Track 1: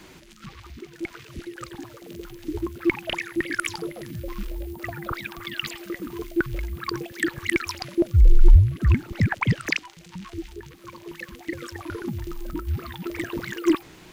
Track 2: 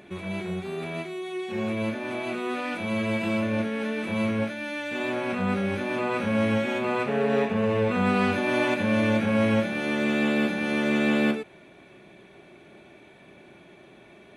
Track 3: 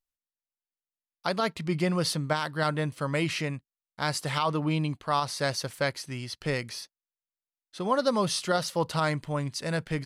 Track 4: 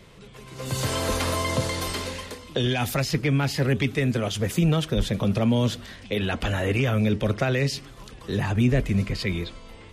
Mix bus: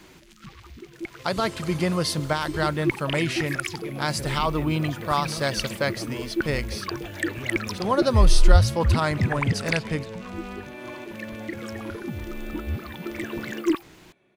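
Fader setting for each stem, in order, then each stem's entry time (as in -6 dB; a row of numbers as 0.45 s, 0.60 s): -2.5 dB, -14.5 dB, +2.5 dB, -14.0 dB; 0.00 s, 2.30 s, 0.00 s, 0.60 s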